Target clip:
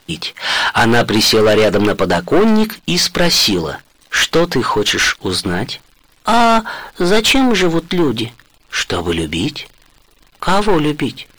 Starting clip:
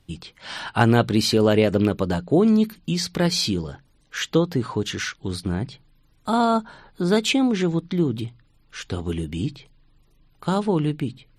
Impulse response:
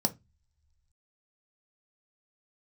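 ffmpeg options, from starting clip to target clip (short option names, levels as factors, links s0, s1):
-filter_complex "[0:a]asplit=2[s0][s1];[s1]highpass=f=720:p=1,volume=22.4,asoftclip=type=tanh:threshold=0.708[s2];[s0][s2]amix=inputs=2:normalize=0,lowpass=f=5800:p=1,volume=0.501,asubboost=boost=3.5:cutoff=64,acrusher=bits=8:dc=4:mix=0:aa=0.000001"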